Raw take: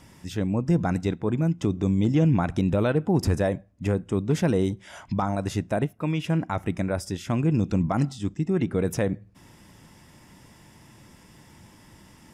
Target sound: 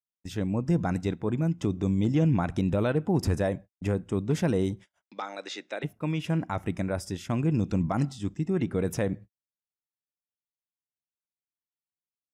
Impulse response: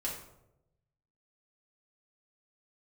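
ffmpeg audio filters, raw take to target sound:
-filter_complex "[0:a]agate=range=0.00112:threshold=0.0126:ratio=16:detection=peak,asplit=3[s0][s1][s2];[s0]afade=t=out:st=5.01:d=0.02[s3];[s1]highpass=f=380:w=0.5412,highpass=f=380:w=1.3066,equalizer=f=410:t=q:w=4:g=-5,equalizer=f=680:t=q:w=4:g=-8,equalizer=f=1000:t=q:w=4:g=-9,equalizer=f=2200:t=q:w=4:g=6,equalizer=f=3800:t=q:w=4:g=9,lowpass=f=6800:w=0.5412,lowpass=f=6800:w=1.3066,afade=t=in:st=5.01:d=0.02,afade=t=out:st=5.83:d=0.02[s4];[s2]afade=t=in:st=5.83:d=0.02[s5];[s3][s4][s5]amix=inputs=3:normalize=0,volume=0.708"

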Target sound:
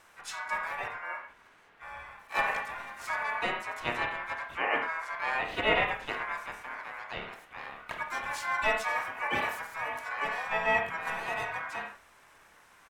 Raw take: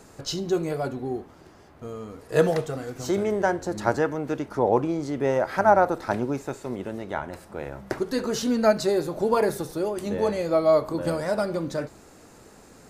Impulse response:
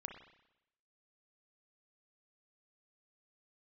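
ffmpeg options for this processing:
-filter_complex "[0:a]aeval=exprs='val(0)*sin(2*PI*1300*n/s)':c=same,asplit=3[s0][s1][s2];[s1]asetrate=29433,aresample=44100,atempo=1.49831,volume=0.355[s3];[s2]asetrate=58866,aresample=44100,atempo=0.749154,volume=0.708[s4];[s0][s3][s4]amix=inputs=3:normalize=0[s5];[1:a]atrim=start_sample=2205,atrim=end_sample=6615,asetrate=48510,aresample=44100[s6];[s5][s6]afir=irnorm=-1:irlink=0,volume=0.708"

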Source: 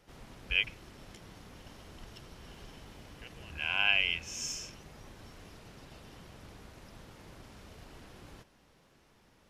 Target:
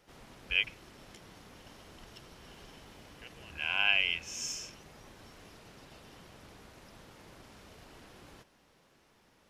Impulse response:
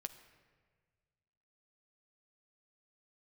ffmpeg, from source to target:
-af "lowshelf=f=160:g=-7"

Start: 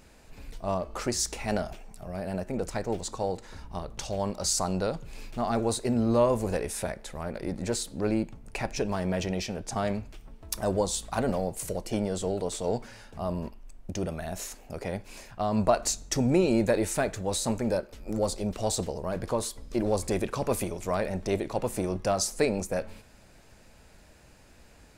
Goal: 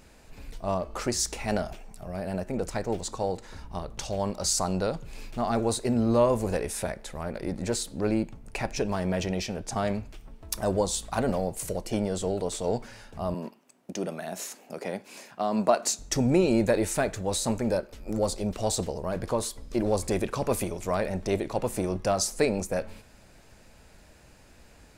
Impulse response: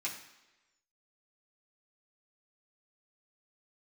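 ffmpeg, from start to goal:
-filter_complex "[0:a]asettb=1/sr,asplit=3[s0][s1][s2];[s0]atrim=end=13.344[s3];[s1]atrim=start=13.34:end=15.99,asetpts=PTS-STARTPTS,afade=t=in:d=0.004:c=qsin,afade=t=out:st=2.646:d=0.004:c=qsin,highpass=f=180:w=0.5412,highpass=f=180:w=1.3066[s4];[s2]atrim=start=15.986[s5];[s3][s4]acrossfade=d=0.004:c1=hsin:c2=qsin[s6];[s6][s5]acrossfade=d=0.004:c1=qsin:c2=hsin,volume=1.12"

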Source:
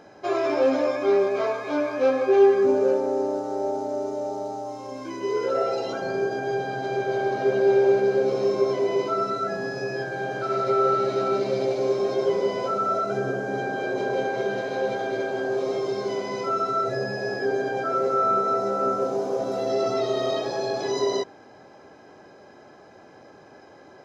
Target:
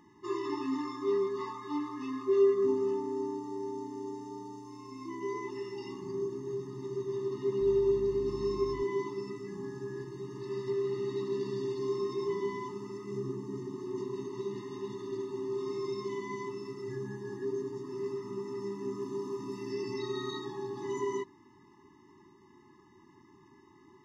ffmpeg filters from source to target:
-filter_complex "[0:a]asettb=1/sr,asplit=3[s0][s1][s2];[s0]atrim=end=7.614[s3];[s1]atrim=start=7.61:end=8.83,asetpts=PTS-STARTPTS,afade=t=in:d=0.004:c=qsin,afade=t=out:st=1.216:d=0.004:c=qsin,aeval=exprs='val(0)+0.0126*(sin(2*PI*50*n/s)+sin(2*PI*2*50*n/s)/2+sin(2*PI*3*50*n/s)/3+sin(2*PI*4*50*n/s)/4+sin(2*PI*5*50*n/s)/5)':c=same[s4];[s2]atrim=start=8.826[s5];[s3][s4]acrossfade=d=0.004:c1=hsin:c2=qsin[s6];[s6][s5]acrossfade=d=0.004:c1=qsin:c2=hsin,afftfilt=real='re*eq(mod(floor(b*sr/1024/430),2),0)':imag='im*eq(mod(floor(b*sr/1024/430),2),0)':win_size=1024:overlap=0.75,volume=0.501"

